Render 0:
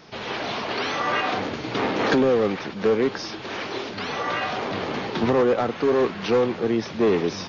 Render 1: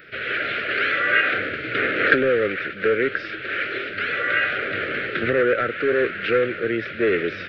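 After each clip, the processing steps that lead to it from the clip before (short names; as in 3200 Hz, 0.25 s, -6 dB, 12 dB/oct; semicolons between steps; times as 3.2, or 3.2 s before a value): EQ curve 120 Hz 0 dB, 210 Hz -7 dB, 340 Hz +1 dB, 580 Hz +3 dB, 950 Hz -29 dB, 1400 Hz +14 dB, 2400 Hz +10 dB, 4200 Hz -5 dB, 6300 Hz -24 dB, 11000 Hz +14 dB; gain -2 dB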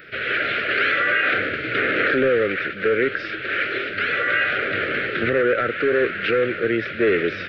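limiter -13 dBFS, peak gain reduction 11 dB; gain +2.5 dB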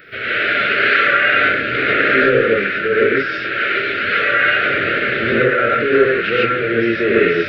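non-linear reverb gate 0.17 s rising, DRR -5 dB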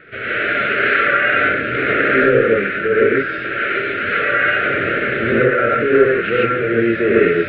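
air absorption 420 m; gain +2 dB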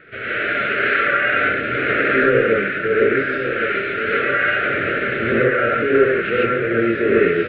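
echo 1.122 s -9 dB; gain -2.5 dB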